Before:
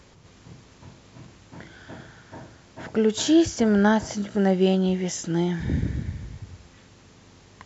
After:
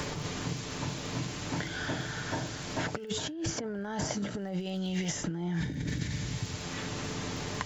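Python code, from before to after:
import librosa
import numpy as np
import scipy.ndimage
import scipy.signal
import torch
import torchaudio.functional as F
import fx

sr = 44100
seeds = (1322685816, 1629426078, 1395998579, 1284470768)

y = x + 0.38 * np.pad(x, (int(6.8 * sr / 1000.0), 0))[:len(x)]
y = fx.over_compress(y, sr, threshold_db=-31.0, ratio=-1.0)
y = fx.dmg_crackle(y, sr, seeds[0], per_s=69.0, level_db=-53.0)
y = fx.band_squash(y, sr, depth_pct=100)
y = y * 10.0 ** (-2.5 / 20.0)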